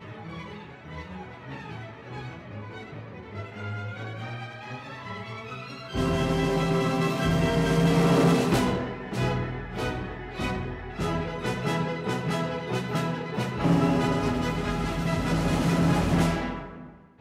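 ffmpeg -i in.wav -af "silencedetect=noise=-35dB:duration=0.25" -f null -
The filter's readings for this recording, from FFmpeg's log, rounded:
silence_start: 16.83
silence_end: 17.21 | silence_duration: 0.37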